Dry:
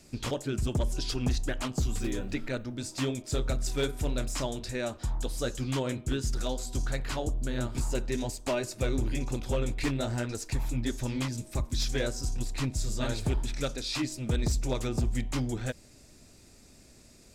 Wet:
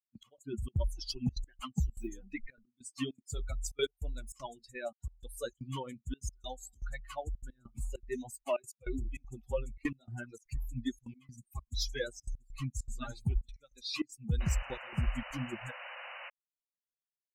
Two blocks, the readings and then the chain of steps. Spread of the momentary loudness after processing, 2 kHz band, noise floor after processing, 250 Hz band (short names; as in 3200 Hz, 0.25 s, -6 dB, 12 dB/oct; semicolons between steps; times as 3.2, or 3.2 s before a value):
11 LU, -6.0 dB, under -85 dBFS, -8.0 dB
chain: per-bin expansion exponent 3; step gate "x.x..xxxx.xxxxxx" 198 bpm -24 dB; painted sound noise, 14.4–16.3, 490–3000 Hz -49 dBFS; gain +2.5 dB